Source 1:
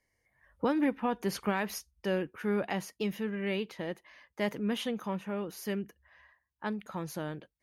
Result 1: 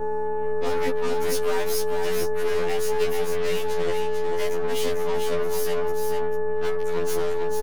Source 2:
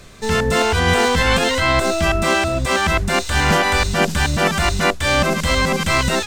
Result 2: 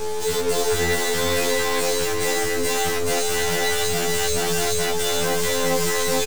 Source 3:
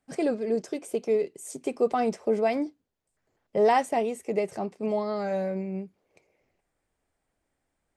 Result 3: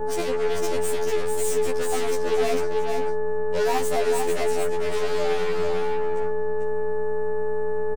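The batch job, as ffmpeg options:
-filter_complex "[0:a]highpass=49,bass=f=250:g=-8,treble=f=4k:g=9,asplit=2[a][b];[b]acompressor=threshold=-29dB:ratio=6,volume=-0.5dB[c];[a][c]amix=inputs=2:normalize=0,aeval=exprs='val(0)+0.0158*(sin(2*PI*60*n/s)+sin(2*PI*2*60*n/s)/2+sin(2*PI*3*60*n/s)/3+sin(2*PI*4*60*n/s)/4+sin(2*PI*5*60*n/s)/5)':c=same,volume=18.5dB,asoftclip=hard,volume=-18.5dB,aeval=exprs='val(0)+0.0447*sin(2*PI*430*n/s)':c=same,aeval=exprs='0.168*(cos(1*acos(clip(val(0)/0.168,-1,1)))-cos(1*PI/2))+0.0299*(cos(2*acos(clip(val(0)/0.168,-1,1)))-cos(2*PI/2))+0.0075*(cos(7*acos(clip(val(0)/0.168,-1,1)))-cos(7*PI/2))+0.0376*(cos(8*acos(clip(val(0)/0.168,-1,1)))-cos(8*PI/2))':c=same,asoftclip=type=tanh:threshold=-17dB,aecho=1:1:446:0.562,afftfilt=real='re*2*eq(mod(b,4),0)':imag='im*2*eq(mod(b,4),0)':win_size=2048:overlap=0.75"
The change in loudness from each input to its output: +8.5, -4.5, +3.0 LU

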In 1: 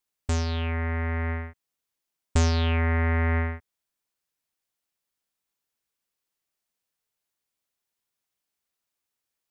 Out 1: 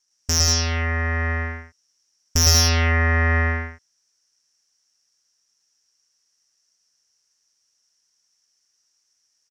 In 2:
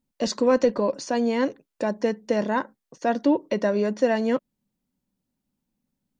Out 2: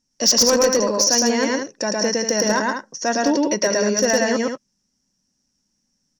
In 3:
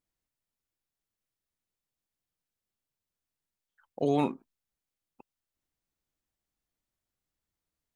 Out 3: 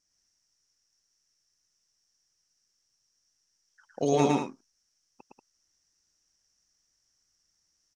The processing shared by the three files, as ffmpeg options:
-filter_complex "[0:a]lowpass=f=5.6k:t=q:w=11,asplit=2[a][b];[b]aecho=0:1:110.8|186.6:0.891|0.447[c];[a][c]amix=inputs=2:normalize=0,aexciter=amount=14.1:drive=2.1:freq=3.2k,highshelf=f=2.7k:t=q:w=3:g=-12,asoftclip=type=hard:threshold=-10dB"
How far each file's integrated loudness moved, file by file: +7.0, +6.0, +3.0 LU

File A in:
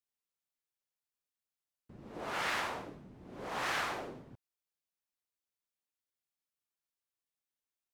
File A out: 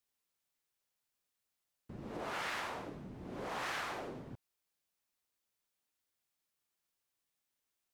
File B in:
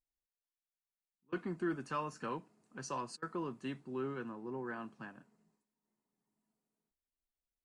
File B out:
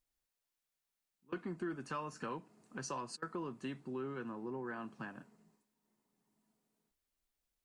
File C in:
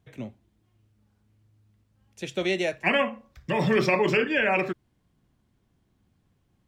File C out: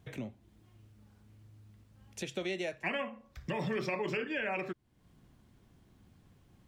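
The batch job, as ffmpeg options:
-af "acompressor=threshold=-48dB:ratio=2.5,volume=6dB"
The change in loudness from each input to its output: -4.5, -2.0, -12.0 LU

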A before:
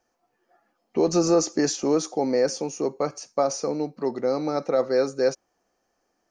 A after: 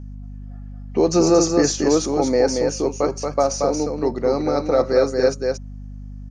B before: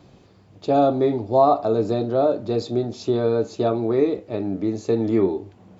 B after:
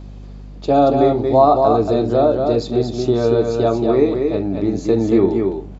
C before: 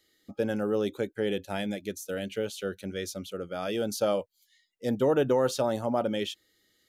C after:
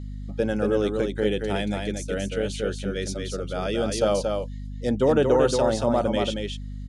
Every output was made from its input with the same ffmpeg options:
-af "aresample=22050,aresample=44100,aecho=1:1:229:0.596,aeval=exprs='val(0)+0.0141*(sin(2*PI*50*n/s)+sin(2*PI*2*50*n/s)/2+sin(2*PI*3*50*n/s)/3+sin(2*PI*4*50*n/s)/4+sin(2*PI*5*50*n/s)/5)':c=same,volume=4dB"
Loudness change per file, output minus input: +5.0, +5.0, +5.0 LU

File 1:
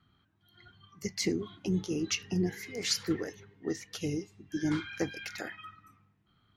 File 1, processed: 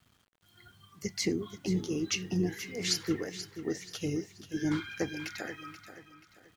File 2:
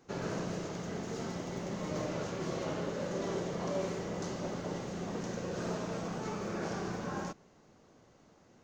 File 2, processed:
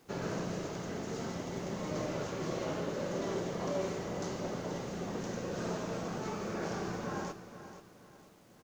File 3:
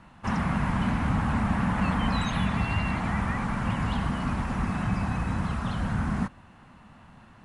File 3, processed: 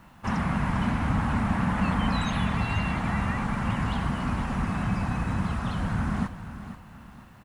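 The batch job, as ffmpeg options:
-filter_complex "[0:a]acrusher=bits=10:mix=0:aa=0.000001,asplit=2[a][b];[b]aecho=0:1:482|964|1446|1928:0.251|0.0879|0.0308|0.0108[c];[a][c]amix=inputs=2:normalize=0"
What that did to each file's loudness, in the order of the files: 0.0, 0.0, +0.5 LU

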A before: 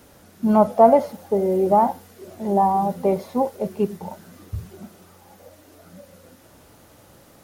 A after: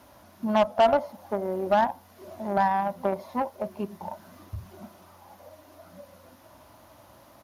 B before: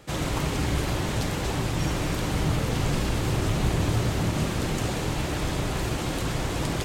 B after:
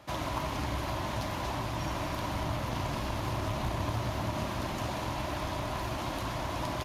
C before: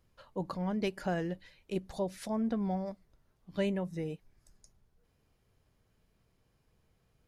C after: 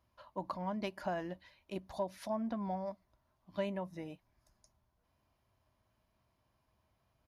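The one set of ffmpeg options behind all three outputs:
-af "equalizer=f=160:t=o:w=0.33:g=-8,equalizer=f=630:t=o:w=0.33:g=8,equalizer=f=1k:t=o:w=0.33:g=10,equalizer=f=8k:t=o:w=0.33:g=-11,aresample=32000,aresample=44100,equalizer=f=450:t=o:w=0.32:g=-11.5,asoftclip=type=tanh:threshold=-2.5dB,acompressor=threshold=-32dB:ratio=1.5,aeval=exprs='0.251*(cos(1*acos(clip(val(0)/0.251,-1,1)))-cos(1*PI/2))+0.0282*(cos(3*acos(clip(val(0)/0.251,-1,1)))-cos(3*PI/2))+0.0447*(cos(4*acos(clip(val(0)/0.251,-1,1)))-cos(4*PI/2))+0.02*(cos(6*acos(clip(val(0)/0.251,-1,1)))-cos(6*PI/2))':c=same,highpass=48"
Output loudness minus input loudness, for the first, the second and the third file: -6.5, -7.0, -4.5 LU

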